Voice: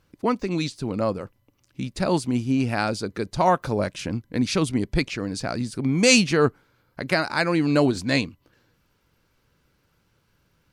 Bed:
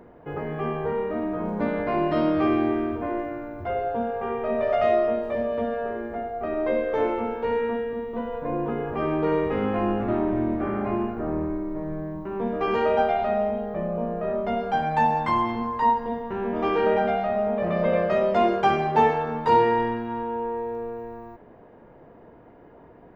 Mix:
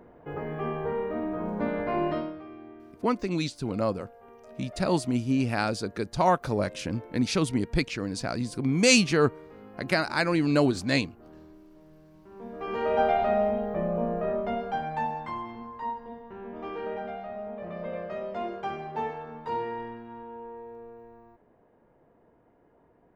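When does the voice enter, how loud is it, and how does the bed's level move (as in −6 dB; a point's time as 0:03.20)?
2.80 s, −3.0 dB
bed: 0:02.10 −3.5 dB
0:02.44 −23 dB
0:12.07 −23 dB
0:13.08 −0.5 dB
0:14.16 −0.5 dB
0:15.42 −13 dB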